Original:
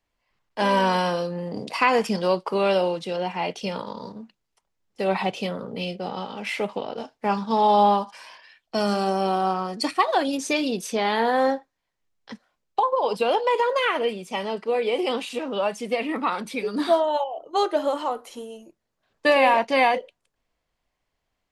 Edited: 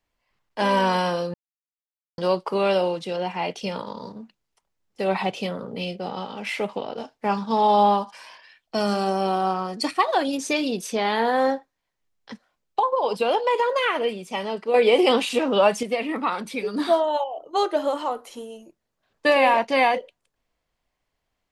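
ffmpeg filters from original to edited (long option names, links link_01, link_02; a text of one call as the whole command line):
ffmpeg -i in.wav -filter_complex "[0:a]asplit=5[link_01][link_02][link_03][link_04][link_05];[link_01]atrim=end=1.34,asetpts=PTS-STARTPTS,afade=type=out:start_time=1.336:duration=0.004:curve=hsin[link_06];[link_02]atrim=start=1.34:end=2.18,asetpts=PTS-STARTPTS,volume=0[link_07];[link_03]atrim=start=2.18:end=14.742,asetpts=PTS-STARTPTS,afade=type=in:duration=0.004:curve=hsin[link_08];[link_04]atrim=start=14.738:end=15.832,asetpts=PTS-STARTPTS,volume=7dB[link_09];[link_05]atrim=start=15.828[link_10];[link_06][link_07][link_08]concat=n=3:v=0:a=1[link_11];[link_11][link_09]acrossfade=duration=0.004:curve1=hsin:curve2=hsin[link_12];[link_12][link_10]acrossfade=duration=0.004:curve1=hsin:curve2=hsin" out.wav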